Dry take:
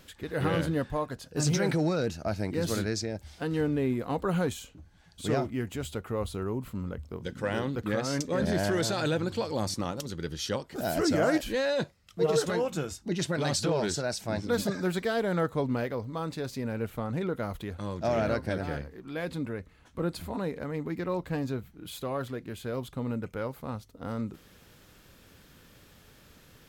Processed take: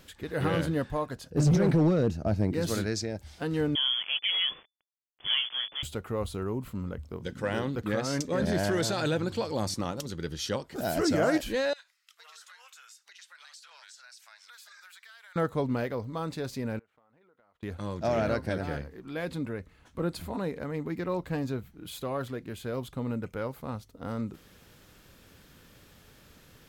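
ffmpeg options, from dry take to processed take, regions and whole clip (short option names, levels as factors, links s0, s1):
-filter_complex "[0:a]asettb=1/sr,asplit=3[s0][s1][s2];[s0]atrim=end=1.304[s3];[s1]atrim=start=1.3:end=2.53,asetpts=PTS-STARTPTS,afade=t=in:d=0.004:c=qsin,afade=t=out:st=1.226:d=0.004:c=qsin,tiltshelf=f=760:g=7,asoftclip=type=hard:threshold=0.126[s4];[s2]atrim=start=2.526[s5];[s3][s4]acrossfade=d=0.004:c1=hsin:c2=qsin[s6];[s6][s5]acrossfade=d=0.004:c1=qsin:c2=hsin,asettb=1/sr,asplit=3[s7][s8][s9];[s7]atrim=end=3.754[s10];[s8]atrim=start=3.75:end=5.83,asetpts=PTS-STARTPTS,afade=t=in:d=0.004:c=qsin,afade=t=out:st=2.076:d=0.004:c=qsin,asubboost=boost=7:cutoff=67,aeval=exprs='val(0)*gte(abs(val(0)),0.0126)':c=same,lowpass=f=3000:t=q:w=0.5098,lowpass=f=3000:t=q:w=0.6013,lowpass=f=3000:t=q:w=0.9,lowpass=f=3000:t=q:w=2.563,afreqshift=-3500[s11];[s9]atrim=start=5.826[s12];[s10][s11]acrossfade=d=0.004:c1=hsin:c2=qsin[s13];[s13][s12]acrossfade=d=0.004:c1=qsin:c2=hsin,asettb=1/sr,asplit=3[s14][s15][s16];[s14]atrim=end=11.734[s17];[s15]atrim=start=11.73:end=15.36,asetpts=PTS-STARTPTS,afade=t=in:d=0.004:c=qsin,afade=t=out:st=3.626:d=0.004:c=qsin,highpass=f=1300:w=0.5412,highpass=f=1300:w=1.3066,acompressor=threshold=0.00316:ratio=5:attack=3.2:release=140:knee=1:detection=peak[s18];[s16]atrim=start=15.356[s19];[s17][s18]acrossfade=d=0.004:c1=hsin:c2=qsin[s20];[s20][s19]acrossfade=d=0.004:c1=qsin:c2=hsin,asettb=1/sr,asplit=3[s21][s22][s23];[s21]atrim=end=16.794[s24];[s22]atrim=start=16.79:end=17.63,asetpts=PTS-STARTPTS,afade=t=in:d=0.004:c=qsin,afade=t=out:st=0.836:d=0.004:c=qsin,lowpass=1200,aderivative,acompressor=threshold=0.001:ratio=10:attack=3.2:release=140:knee=1:detection=peak[s25];[s23]atrim=start=17.626[s26];[s24][s25]acrossfade=d=0.004:c1=hsin:c2=qsin[s27];[s27][s26]acrossfade=d=0.004:c1=qsin:c2=hsin"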